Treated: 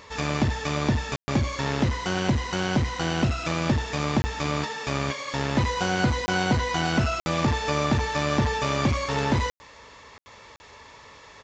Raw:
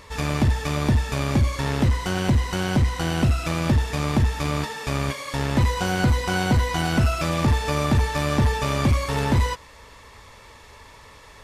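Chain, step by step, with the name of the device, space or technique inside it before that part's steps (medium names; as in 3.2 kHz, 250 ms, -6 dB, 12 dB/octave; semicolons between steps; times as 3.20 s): call with lost packets (high-pass 160 Hz 6 dB/octave; resampled via 16 kHz; lost packets bursts)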